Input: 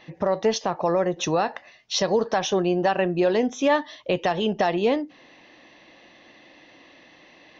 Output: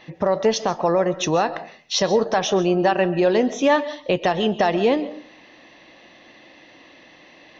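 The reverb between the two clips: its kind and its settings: digital reverb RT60 0.43 s, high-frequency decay 0.35×, pre-delay 95 ms, DRR 14.5 dB; gain +3 dB

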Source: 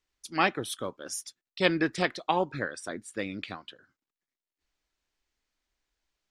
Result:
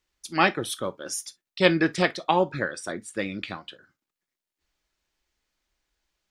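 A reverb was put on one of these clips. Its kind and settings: non-linear reverb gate 80 ms falling, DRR 11.5 dB; gain +4 dB

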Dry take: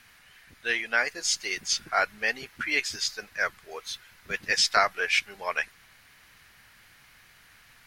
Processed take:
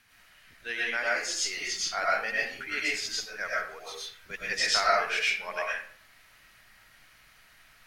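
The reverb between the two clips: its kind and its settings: digital reverb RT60 0.51 s, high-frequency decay 0.7×, pre-delay 70 ms, DRR -5.5 dB; gain -8 dB

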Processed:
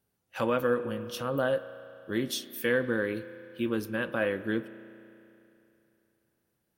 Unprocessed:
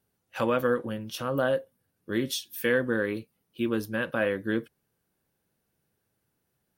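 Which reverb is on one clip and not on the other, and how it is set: spring tank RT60 2.9 s, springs 33 ms, chirp 35 ms, DRR 13.5 dB; gain -2 dB

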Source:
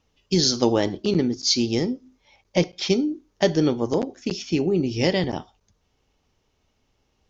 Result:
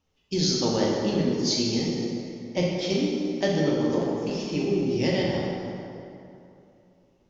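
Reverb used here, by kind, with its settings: plate-style reverb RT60 2.8 s, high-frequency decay 0.6×, DRR -4 dB; gain -8 dB

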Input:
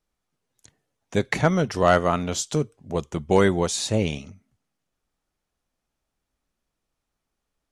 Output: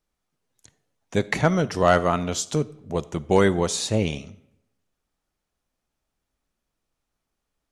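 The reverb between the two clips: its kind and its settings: digital reverb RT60 0.84 s, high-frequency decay 0.7×, pre-delay 10 ms, DRR 18.5 dB

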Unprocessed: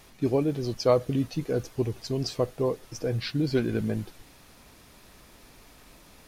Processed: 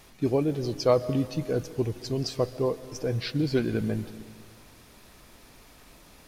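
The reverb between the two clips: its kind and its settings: digital reverb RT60 2 s, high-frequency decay 0.85×, pre-delay 95 ms, DRR 15 dB

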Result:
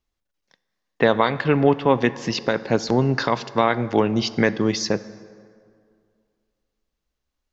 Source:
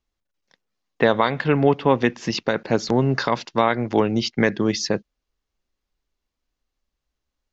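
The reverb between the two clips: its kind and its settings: plate-style reverb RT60 2.2 s, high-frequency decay 0.55×, DRR 15 dB

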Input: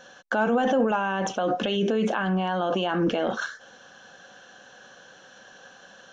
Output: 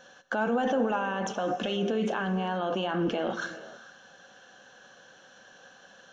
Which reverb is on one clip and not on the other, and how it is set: non-linear reverb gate 0.5 s flat, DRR 11.5 dB; gain -4.5 dB

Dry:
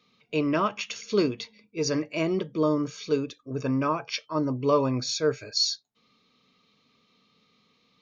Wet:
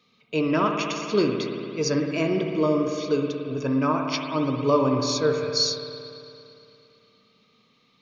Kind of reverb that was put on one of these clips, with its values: spring tank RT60 2.7 s, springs 57 ms, chirp 55 ms, DRR 3 dB; gain +1.5 dB

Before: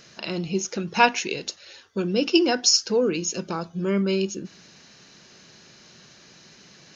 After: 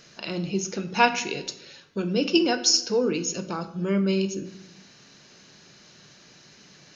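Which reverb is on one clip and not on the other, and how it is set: shoebox room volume 260 m³, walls mixed, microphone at 0.37 m; gain -2 dB

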